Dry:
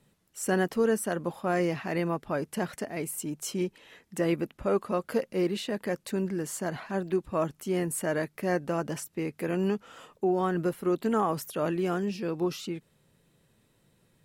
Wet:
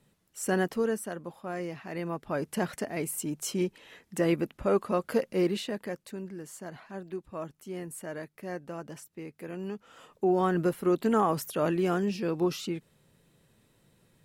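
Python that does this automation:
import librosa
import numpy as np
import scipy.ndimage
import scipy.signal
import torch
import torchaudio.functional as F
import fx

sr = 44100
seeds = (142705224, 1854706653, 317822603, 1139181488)

y = fx.gain(x, sr, db=fx.line((0.67, -1.0), (1.25, -8.5), (1.81, -8.5), (2.5, 1.0), (5.51, 1.0), (6.18, -9.5), (9.67, -9.5), (10.32, 1.5)))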